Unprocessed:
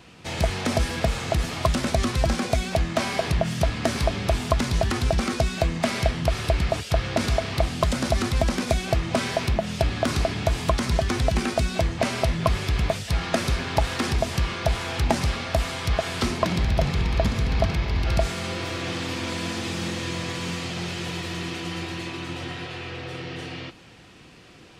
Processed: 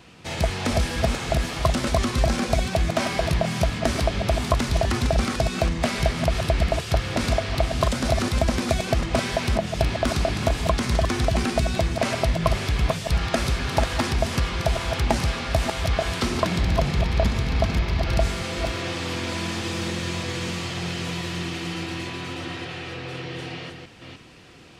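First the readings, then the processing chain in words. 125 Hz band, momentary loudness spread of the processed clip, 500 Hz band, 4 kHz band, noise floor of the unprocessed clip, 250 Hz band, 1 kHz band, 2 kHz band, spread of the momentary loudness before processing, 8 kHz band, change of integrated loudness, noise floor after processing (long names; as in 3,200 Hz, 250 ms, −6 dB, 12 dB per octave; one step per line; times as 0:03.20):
+1.0 dB, 7 LU, +1.0 dB, +1.0 dB, −48 dBFS, +1.0 dB, +1.0 dB, +1.0 dB, 7 LU, +1.0 dB, +1.0 dB, −40 dBFS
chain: delay that plays each chunk backwards 302 ms, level −6 dB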